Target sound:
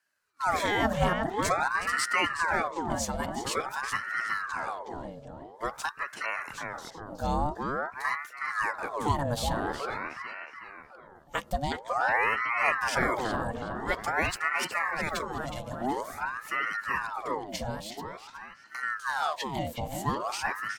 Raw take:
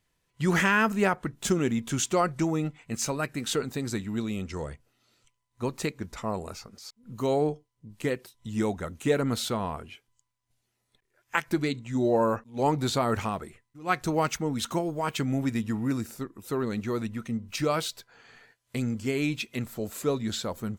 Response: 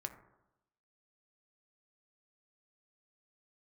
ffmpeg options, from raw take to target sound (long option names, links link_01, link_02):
-filter_complex "[0:a]asettb=1/sr,asplit=3[link_01][link_02][link_03];[link_01]atrim=end=15.134[link_04];[link_02]atrim=start=15.13:end=15.81,asetpts=PTS-STARTPTS,afade=type=in:duration=0.004:curve=qsin,afade=type=out:start_time=0.676:duration=0.004:curve=qsin,highpass=frequency=670:poles=1[link_05];[link_03]atrim=start=15.806[link_06];[link_04][link_05]acrossfade=duration=0.004:curve1=hsin:curve2=qsin[link_07];[link_07][link_06]acrossfade=duration=0.004:curve1=qsin:curve2=hsin,asettb=1/sr,asplit=3[link_08][link_09][link_10];[link_08]atrim=end=17.624[link_11];[link_09]atrim=start=17.62:end=18.83,asetpts=PTS-STARTPTS,afade=type=in:duration=0.004:curve=qsin,afade=type=out:start_time=1.206:duration=0.004:curve=qsin,acompressor=threshold=-33dB:ratio=6[link_12];[link_10]atrim=start=18.826[link_13];[link_11][link_12]acrossfade=duration=0.004:curve1=hsin:curve2=qsin[link_14];[link_14][link_13]acrossfade=duration=0.004:curve1=qsin:curve2=hsin,asuperstop=centerf=1900:order=20:qfactor=2.2,asplit=2[link_15][link_16];[link_16]adelay=368,lowpass=frequency=2600:poles=1,volume=-4dB,asplit=2[link_17][link_18];[link_18]adelay=368,lowpass=frequency=2600:poles=1,volume=0.54,asplit=2[link_19][link_20];[link_20]adelay=368,lowpass=frequency=2600:poles=1,volume=0.54,asplit=2[link_21][link_22];[link_22]adelay=368,lowpass=frequency=2600:poles=1,volume=0.54,asplit=2[link_23][link_24];[link_24]adelay=368,lowpass=frequency=2600:poles=1,volume=0.54,asplit=2[link_25][link_26];[link_26]adelay=368,lowpass=frequency=2600:poles=1,volume=0.54,asplit=2[link_27][link_28];[link_28]adelay=368,lowpass=frequency=2600:poles=1,volume=0.54[link_29];[link_15][link_17][link_19][link_21][link_23][link_25][link_27][link_29]amix=inputs=8:normalize=0,aeval=exprs='val(0)*sin(2*PI*1000*n/s+1000*0.65/0.48*sin(2*PI*0.48*n/s))':channel_layout=same"